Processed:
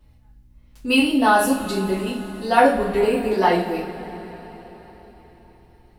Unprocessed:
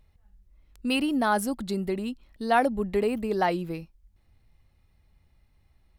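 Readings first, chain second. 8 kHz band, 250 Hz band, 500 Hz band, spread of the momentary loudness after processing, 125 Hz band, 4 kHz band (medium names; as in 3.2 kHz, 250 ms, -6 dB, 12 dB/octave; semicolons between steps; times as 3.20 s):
+8.0 dB, +6.5 dB, +8.0 dB, 18 LU, +4.5 dB, +8.5 dB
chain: hum 60 Hz, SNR 32 dB; two-slope reverb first 0.39 s, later 4.5 s, from -20 dB, DRR -10 dB; trim -2.5 dB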